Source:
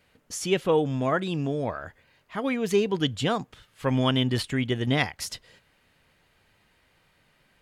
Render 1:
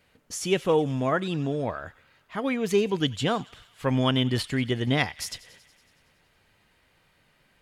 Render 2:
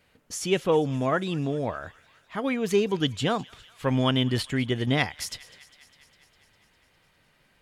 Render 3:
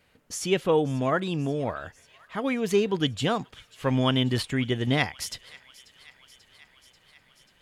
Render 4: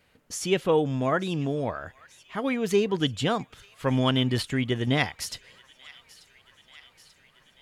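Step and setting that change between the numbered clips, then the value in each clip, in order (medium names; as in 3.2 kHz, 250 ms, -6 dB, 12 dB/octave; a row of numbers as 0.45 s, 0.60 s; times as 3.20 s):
feedback echo behind a high-pass, time: 93 ms, 202 ms, 538 ms, 887 ms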